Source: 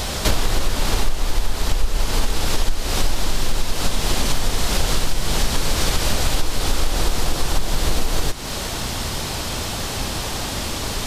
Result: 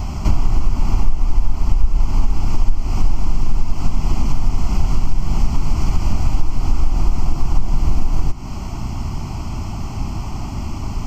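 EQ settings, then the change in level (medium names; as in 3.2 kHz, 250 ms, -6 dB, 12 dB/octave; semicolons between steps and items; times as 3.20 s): tilt shelf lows +9 dB, about 1.1 kHz; static phaser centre 2.5 kHz, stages 8; -3.5 dB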